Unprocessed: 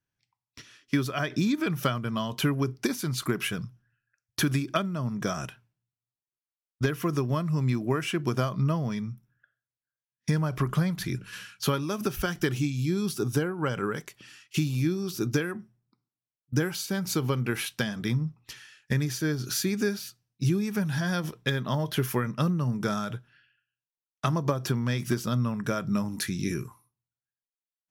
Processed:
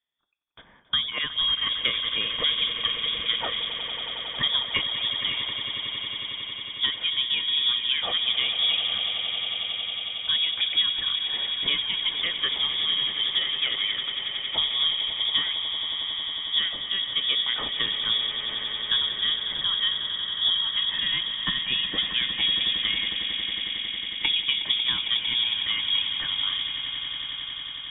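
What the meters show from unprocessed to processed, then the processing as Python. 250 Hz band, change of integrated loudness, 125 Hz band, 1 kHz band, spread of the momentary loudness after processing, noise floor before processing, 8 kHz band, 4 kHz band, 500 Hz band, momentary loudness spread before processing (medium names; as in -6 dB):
-19.0 dB, +5.0 dB, -21.5 dB, -3.5 dB, 6 LU, under -85 dBFS, under -40 dB, +19.5 dB, -12.5 dB, 8 LU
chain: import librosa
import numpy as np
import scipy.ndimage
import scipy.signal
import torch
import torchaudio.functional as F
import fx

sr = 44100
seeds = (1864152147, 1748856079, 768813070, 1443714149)

y = fx.echo_swell(x, sr, ms=91, loudest=8, wet_db=-13)
y = fx.freq_invert(y, sr, carrier_hz=3500)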